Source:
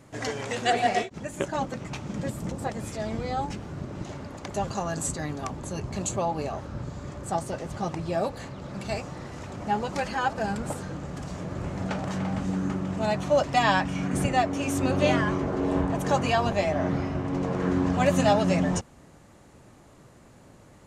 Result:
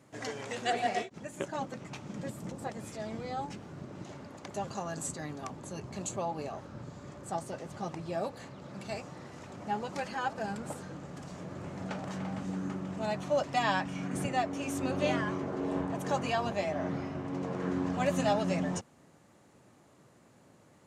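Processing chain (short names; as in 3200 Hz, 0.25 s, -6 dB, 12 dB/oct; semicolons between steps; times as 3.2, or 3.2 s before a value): HPF 120 Hz 12 dB/oct; gain -7 dB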